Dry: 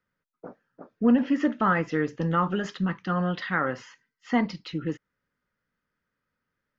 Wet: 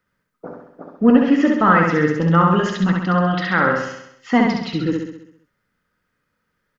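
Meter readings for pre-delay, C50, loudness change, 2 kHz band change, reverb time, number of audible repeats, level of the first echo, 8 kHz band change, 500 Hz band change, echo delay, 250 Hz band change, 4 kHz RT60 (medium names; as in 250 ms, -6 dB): no reverb, no reverb, +9.5 dB, +10.0 dB, no reverb, 7, -3.0 dB, no reading, +10.0 dB, 66 ms, +9.0 dB, no reverb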